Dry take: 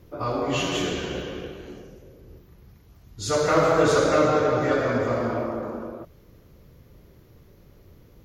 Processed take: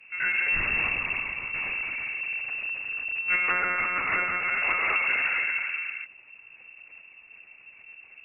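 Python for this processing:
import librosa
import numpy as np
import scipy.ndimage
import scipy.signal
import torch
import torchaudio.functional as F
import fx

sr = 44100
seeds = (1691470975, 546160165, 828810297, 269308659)

p1 = fx.lpc_monotone(x, sr, seeds[0], pitch_hz=180.0, order=8)
p2 = fx.peak_eq(p1, sr, hz=220.0, db=-13.0, octaves=1.2)
p3 = fx.leveller(p2, sr, passes=5, at=(1.53, 3.21))
p4 = 10.0 ** (-25.0 / 20.0) * (np.abs((p3 / 10.0 ** (-25.0 / 20.0) + 3.0) % 4.0 - 2.0) - 1.0)
p5 = p3 + (p4 * librosa.db_to_amplitude(-9.5))
p6 = fx.freq_invert(p5, sr, carrier_hz=2700)
y = fx.env_lowpass_down(p6, sr, base_hz=1500.0, full_db=-17.0)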